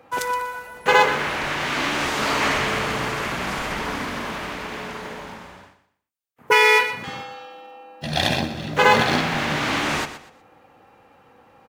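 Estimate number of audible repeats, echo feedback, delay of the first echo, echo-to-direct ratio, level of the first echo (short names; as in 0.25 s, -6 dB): 3, 29%, 0.121 s, -11.5 dB, -12.0 dB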